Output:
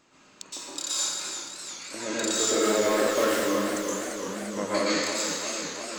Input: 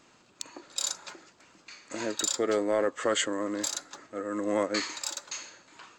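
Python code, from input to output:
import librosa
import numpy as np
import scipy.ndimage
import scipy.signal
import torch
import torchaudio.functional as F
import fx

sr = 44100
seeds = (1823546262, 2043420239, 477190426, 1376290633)

y = fx.dead_time(x, sr, dead_ms=0.14, at=(2.44, 3.76))
y = fx.spec_erase(y, sr, start_s=3.6, length_s=0.98, low_hz=220.0, high_hz=5900.0)
y = fx.rev_plate(y, sr, seeds[0], rt60_s=1.2, hf_ratio=1.0, predelay_ms=105, drr_db=-8.5)
y = fx.echo_warbled(y, sr, ms=343, feedback_pct=77, rate_hz=2.8, cents=81, wet_db=-9.5)
y = F.gain(torch.from_numpy(y), -3.5).numpy()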